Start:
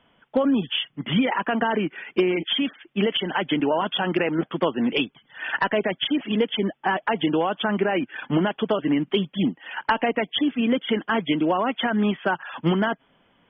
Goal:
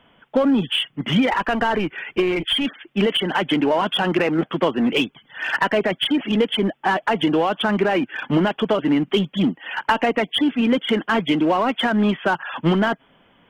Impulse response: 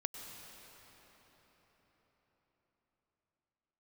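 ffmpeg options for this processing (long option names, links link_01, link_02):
-filter_complex "[0:a]asplit=2[link_01][link_02];[link_02]volume=27dB,asoftclip=hard,volume=-27dB,volume=-4dB[link_03];[link_01][link_03]amix=inputs=2:normalize=0,asplit=3[link_04][link_05][link_06];[link_04]afade=type=out:start_time=1.31:duration=0.02[link_07];[link_05]asubboost=boost=10:cutoff=82,afade=type=in:start_time=1.31:duration=0.02,afade=type=out:start_time=2.64:duration=0.02[link_08];[link_06]afade=type=in:start_time=2.64:duration=0.02[link_09];[link_07][link_08][link_09]amix=inputs=3:normalize=0,volume=1.5dB"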